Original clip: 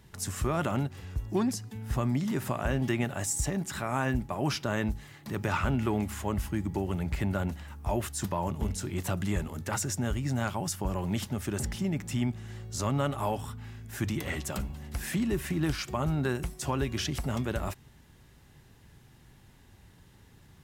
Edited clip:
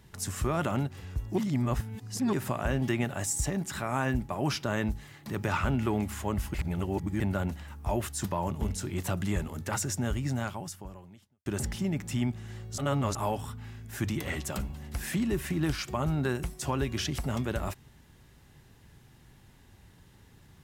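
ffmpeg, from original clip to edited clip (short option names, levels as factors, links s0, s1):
-filter_complex "[0:a]asplit=8[s0][s1][s2][s3][s4][s5][s6][s7];[s0]atrim=end=1.382[s8];[s1]atrim=start=1.378:end=2.332,asetpts=PTS-STARTPTS,areverse[s9];[s2]atrim=start=2.328:end=6.542[s10];[s3]atrim=start=6.538:end=7.202,asetpts=PTS-STARTPTS,areverse[s11];[s4]atrim=start=7.198:end=11.46,asetpts=PTS-STARTPTS,afade=t=out:st=3.072:d=1.19:c=qua[s12];[s5]atrim=start=11.46:end=12.782,asetpts=PTS-STARTPTS,afade=t=in:d=0.004:c=hsin[s13];[s6]atrim=start=12.778:end=13.152,asetpts=PTS-STARTPTS,areverse[s14];[s7]atrim=start=13.148[s15];[s8][s9]acrossfade=d=0.004:c1=hsin:c2=hsin[s16];[s16][s10]acrossfade=d=0.004:c1=hsin:c2=hsin[s17];[s17][s11]acrossfade=d=0.004:c1=hsin:c2=hsin[s18];[s12][s13]concat=n=2:v=0:a=1[s19];[s18][s19]acrossfade=d=0.004:c1=hsin:c2=hsin[s20];[s20][s14]acrossfade=d=0.004:c1=hsin:c2=hsin[s21];[s21][s15]acrossfade=d=0.004:c1=hsin:c2=hsin"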